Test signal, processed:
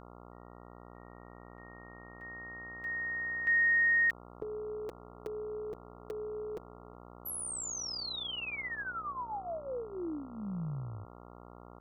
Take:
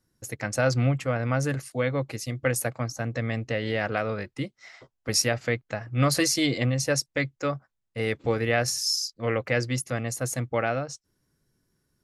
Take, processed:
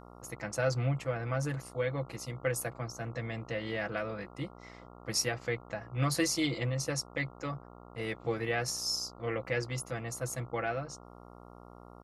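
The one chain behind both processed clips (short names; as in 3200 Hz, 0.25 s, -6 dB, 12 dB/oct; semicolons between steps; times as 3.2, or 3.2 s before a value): comb 6 ms, depth 62%; buzz 60 Hz, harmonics 23, -43 dBFS -2 dB/oct; gain -9 dB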